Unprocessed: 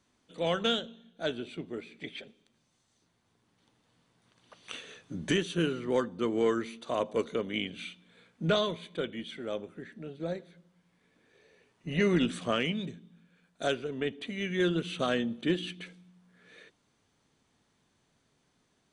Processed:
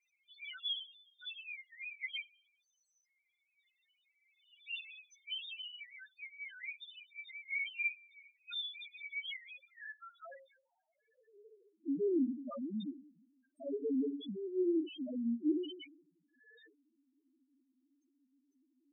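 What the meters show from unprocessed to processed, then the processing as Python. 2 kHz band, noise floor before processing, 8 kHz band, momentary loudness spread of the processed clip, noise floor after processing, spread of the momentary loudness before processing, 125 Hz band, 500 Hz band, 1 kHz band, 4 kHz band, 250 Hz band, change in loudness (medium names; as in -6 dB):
-5.0 dB, -73 dBFS, under -25 dB, 18 LU, -82 dBFS, 15 LU, under -20 dB, -10.5 dB, -21.5 dB, -6.5 dB, -5.5 dB, -7.5 dB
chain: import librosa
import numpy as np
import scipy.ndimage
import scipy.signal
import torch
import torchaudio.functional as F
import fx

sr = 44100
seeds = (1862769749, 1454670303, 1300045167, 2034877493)

p1 = F.preemphasis(torch.from_numpy(x), 0.8).numpy()
p2 = fx.hum_notches(p1, sr, base_hz=60, count=9)
p3 = fx.over_compress(p2, sr, threshold_db=-48.0, ratio=-0.5)
p4 = p2 + (p3 * librosa.db_to_amplitude(1.0))
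p5 = fx.filter_sweep_highpass(p4, sr, from_hz=2200.0, to_hz=290.0, start_s=9.51, end_s=11.82, q=3.8)
p6 = fx.spec_topn(p5, sr, count=1)
y = p6 * librosa.db_to_amplitude(7.5)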